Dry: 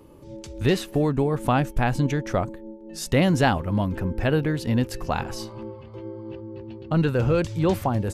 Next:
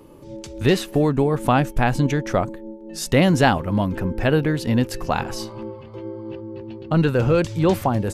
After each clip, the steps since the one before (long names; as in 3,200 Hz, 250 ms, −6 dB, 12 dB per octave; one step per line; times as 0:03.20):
parametric band 62 Hz −6.5 dB 1.3 octaves
level +4 dB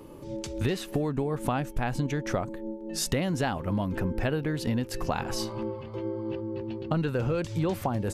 downward compressor 6 to 1, threshold −25 dBFS, peak gain reduction 13.5 dB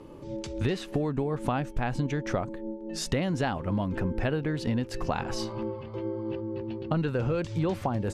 high-frequency loss of the air 56 metres